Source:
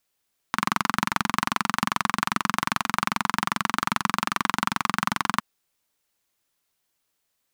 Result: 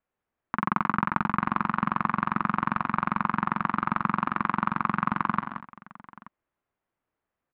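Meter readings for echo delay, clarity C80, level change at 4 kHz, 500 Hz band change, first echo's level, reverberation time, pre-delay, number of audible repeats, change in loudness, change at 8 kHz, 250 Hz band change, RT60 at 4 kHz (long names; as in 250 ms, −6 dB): 50 ms, no reverb audible, −18.5 dB, −2.0 dB, −11.5 dB, no reverb audible, no reverb audible, 4, −1.5 dB, below −40 dB, +1.5 dB, no reverb audible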